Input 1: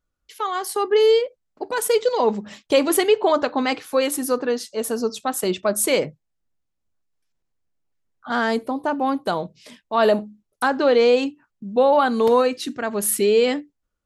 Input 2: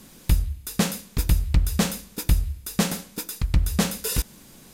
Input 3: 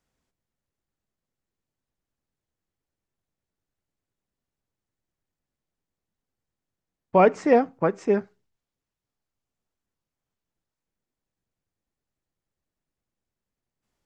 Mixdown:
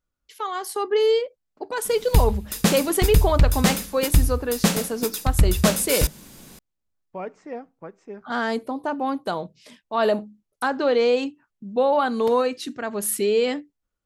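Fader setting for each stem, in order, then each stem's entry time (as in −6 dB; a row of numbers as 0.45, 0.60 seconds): −3.5, +3.0, −16.5 decibels; 0.00, 1.85, 0.00 seconds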